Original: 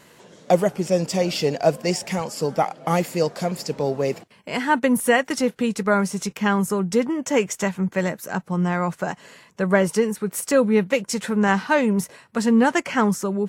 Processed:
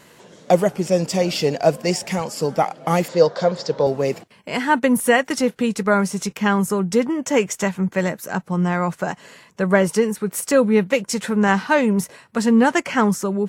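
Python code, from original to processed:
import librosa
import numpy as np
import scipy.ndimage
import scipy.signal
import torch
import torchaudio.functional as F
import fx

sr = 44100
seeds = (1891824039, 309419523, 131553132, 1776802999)

y = fx.cabinet(x, sr, low_hz=100.0, low_slope=12, high_hz=6000.0, hz=(240.0, 530.0, 1000.0, 1500.0, 2500.0, 3700.0), db=(-8, 9, 5, 5, -8, 6), at=(3.08, 3.87))
y = y * librosa.db_to_amplitude(2.0)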